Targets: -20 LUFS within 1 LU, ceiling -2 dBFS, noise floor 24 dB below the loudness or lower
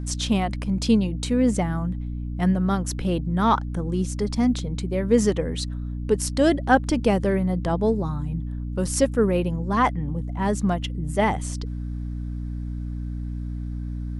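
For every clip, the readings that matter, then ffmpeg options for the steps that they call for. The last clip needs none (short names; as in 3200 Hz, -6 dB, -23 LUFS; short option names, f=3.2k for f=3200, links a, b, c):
hum 60 Hz; harmonics up to 300 Hz; hum level -27 dBFS; loudness -24.5 LUFS; peak -5.5 dBFS; loudness target -20.0 LUFS
-> -af "bandreject=f=60:t=h:w=4,bandreject=f=120:t=h:w=4,bandreject=f=180:t=h:w=4,bandreject=f=240:t=h:w=4,bandreject=f=300:t=h:w=4"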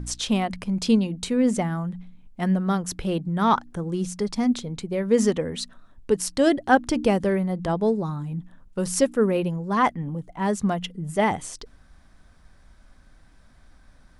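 hum none; loudness -24.5 LUFS; peak -5.5 dBFS; loudness target -20.0 LUFS
-> -af "volume=4.5dB,alimiter=limit=-2dB:level=0:latency=1"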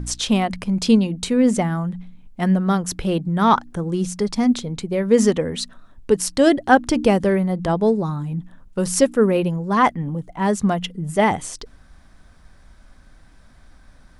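loudness -20.0 LUFS; peak -2.0 dBFS; noise floor -49 dBFS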